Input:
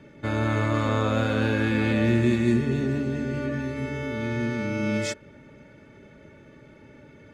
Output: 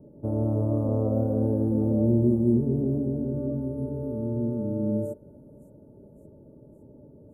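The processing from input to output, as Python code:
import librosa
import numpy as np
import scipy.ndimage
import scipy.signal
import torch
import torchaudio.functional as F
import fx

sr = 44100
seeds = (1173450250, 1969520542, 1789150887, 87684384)

y = scipy.signal.sosfilt(scipy.signal.cheby2(4, 80, [2200.0, 4400.0], 'bandstop', fs=sr, output='sos'), x)
y = fx.echo_wet_highpass(y, sr, ms=565, feedback_pct=62, hz=2000.0, wet_db=-14)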